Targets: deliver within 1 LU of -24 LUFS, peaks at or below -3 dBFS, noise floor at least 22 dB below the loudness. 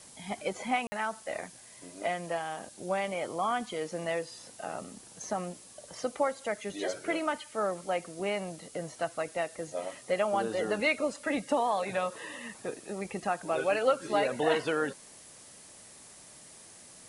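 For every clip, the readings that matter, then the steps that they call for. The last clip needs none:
dropouts 1; longest dropout 50 ms; noise floor -52 dBFS; noise floor target -55 dBFS; loudness -32.5 LUFS; peak level -13.0 dBFS; loudness target -24.0 LUFS
-> interpolate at 0.87 s, 50 ms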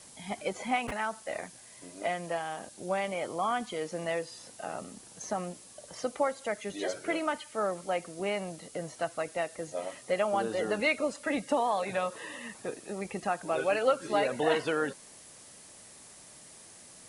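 dropouts 0; noise floor -52 dBFS; noise floor target -55 dBFS
-> noise reduction 6 dB, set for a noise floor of -52 dBFS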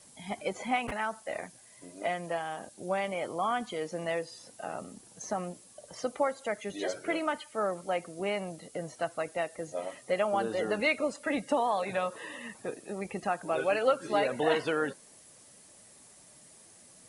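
noise floor -56 dBFS; loudness -32.5 LUFS; peak level -13.0 dBFS; loudness target -24.0 LUFS
-> trim +8.5 dB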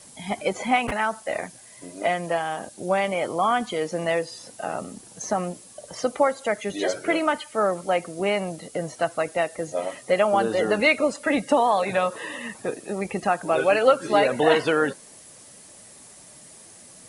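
loudness -24.0 LUFS; peak level -4.5 dBFS; noise floor -48 dBFS

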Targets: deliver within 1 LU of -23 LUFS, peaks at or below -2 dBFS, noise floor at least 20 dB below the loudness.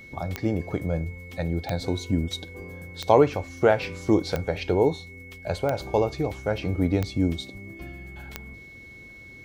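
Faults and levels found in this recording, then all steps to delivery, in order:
clicks found 7; steady tone 2.2 kHz; tone level -44 dBFS; loudness -26.0 LUFS; peak level -4.0 dBFS; loudness target -23.0 LUFS
-> de-click; band-stop 2.2 kHz, Q 30; trim +3 dB; peak limiter -2 dBFS

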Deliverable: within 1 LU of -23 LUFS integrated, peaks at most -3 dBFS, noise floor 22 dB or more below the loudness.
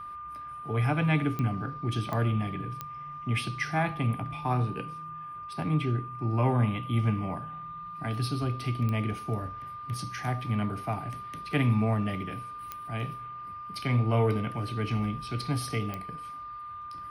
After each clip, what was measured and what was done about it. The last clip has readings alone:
clicks found 6; steady tone 1.2 kHz; tone level -38 dBFS; loudness -31.0 LUFS; peak level -12.5 dBFS; loudness target -23.0 LUFS
-> de-click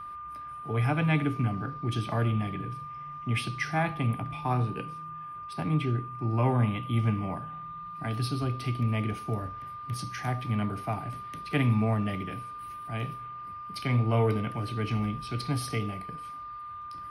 clicks found 0; steady tone 1.2 kHz; tone level -38 dBFS
-> band-stop 1.2 kHz, Q 30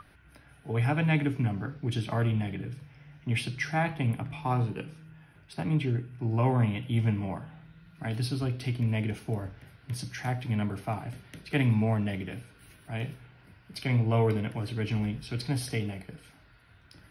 steady tone not found; loudness -30.5 LUFS; peak level -13.0 dBFS; loudness target -23.0 LUFS
-> trim +7.5 dB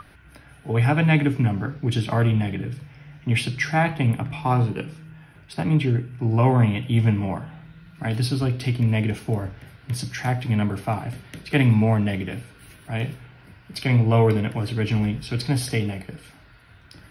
loudness -23.0 LUFS; peak level -5.5 dBFS; noise floor -51 dBFS

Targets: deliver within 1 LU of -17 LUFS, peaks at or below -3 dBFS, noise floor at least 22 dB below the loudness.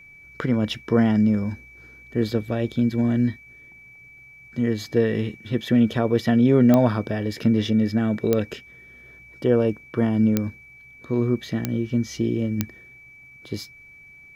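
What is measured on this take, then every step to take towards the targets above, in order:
clicks found 5; steady tone 2.3 kHz; tone level -45 dBFS; loudness -22.5 LUFS; peak level -4.5 dBFS; loudness target -17.0 LUFS
-> de-click; band-stop 2.3 kHz, Q 30; trim +5.5 dB; peak limiter -3 dBFS

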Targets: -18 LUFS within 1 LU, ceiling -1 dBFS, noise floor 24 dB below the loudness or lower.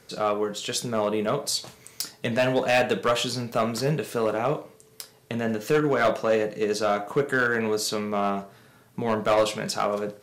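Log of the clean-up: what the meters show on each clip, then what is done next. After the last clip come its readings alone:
clipped samples 1.0%; clipping level -15.0 dBFS; loudness -25.5 LUFS; peak level -15.0 dBFS; loudness target -18.0 LUFS
-> clip repair -15 dBFS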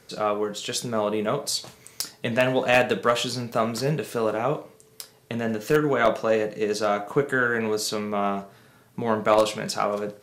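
clipped samples 0.0%; loudness -25.0 LUFS; peak level -6.0 dBFS; loudness target -18.0 LUFS
-> trim +7 dB; peak limiter -1 dBFS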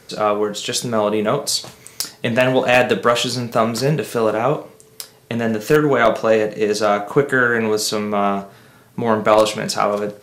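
loudness -18.0 LUFS; peak level -1.0 dBFS; noise floor -49 dBFS

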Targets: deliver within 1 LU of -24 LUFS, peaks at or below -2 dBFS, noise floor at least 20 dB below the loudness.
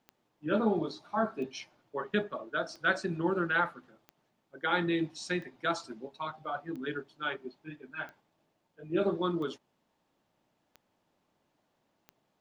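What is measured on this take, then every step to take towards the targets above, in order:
clicks found 10; loudness -33.5 LUFS; peak level -13.0 dBFS; loudness target -24.0 LUFS
-> de-click; trim +9.5 dB

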